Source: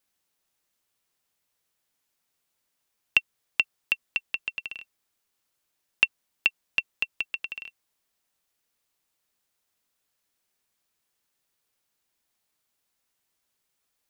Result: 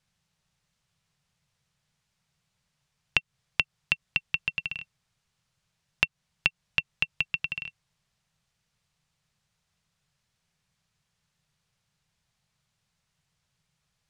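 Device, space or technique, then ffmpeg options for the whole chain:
jukebox: -af "lowpass=6.7k,lowshelf=f=210:t=q:w=3:g=10.5,acompressor=threshold=-24dB:ratio=5,volume=3.5dB"

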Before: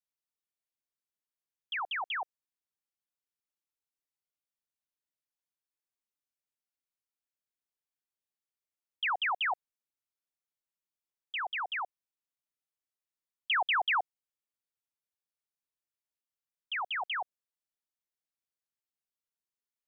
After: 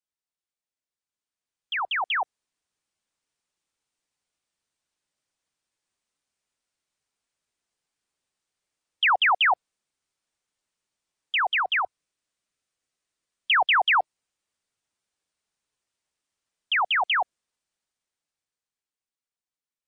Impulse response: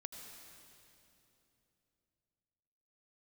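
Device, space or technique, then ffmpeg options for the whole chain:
low-bitrate web radio: -filter_complex "[0:a]asettb=1/sr,asplit=3[a][b][c];[a]atrim=end=11.574[d];[b]atrim=start=11.57:end=13.59,asetpts=PTS-STARTPTS,afade=t=in:d=0.004:c=qsin,afade=t=out:st=2.016:d=0.004:c=qsin,equalizer=f=870:t=o:w=0.31:g=-5.5[e];[c]atrim=start=13.586[f];[d][e]acrossfade=d=0.004:c1=hsin:c2=qsin[g];[g][f]acrossfade=d=0.004:c1=qsin:c2=hsin,dynaudnorm=f=120:g=31:m=12dB,alimiter=limit=-15.5dB:level=0:latency=1:release=67" -ar 22050 -c:a libmp3lame -b:a 40k

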